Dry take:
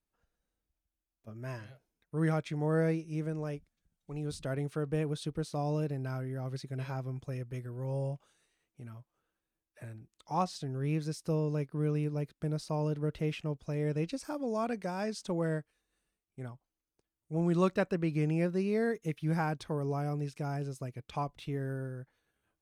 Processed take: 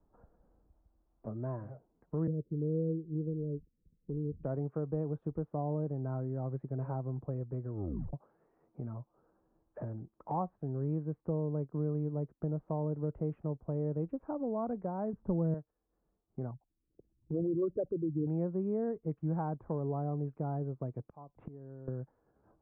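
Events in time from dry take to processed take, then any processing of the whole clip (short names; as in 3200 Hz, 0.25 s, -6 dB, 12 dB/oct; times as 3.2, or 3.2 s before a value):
2.27–4.44 steep low-pass 510 Hz 72 dB/oct
7.72 tape stop 0.41 s
15.13–15.54 RIAA curve playback
16.51–18.27 formant sharpening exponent 3
21.02–21.88 flipped gate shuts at -38 dBFS, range -25 dB
whole clip: inverse Chebyshev low-pass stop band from 4500 Hz, stop band 70 dB; three-band squash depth 70%; gain -2 dB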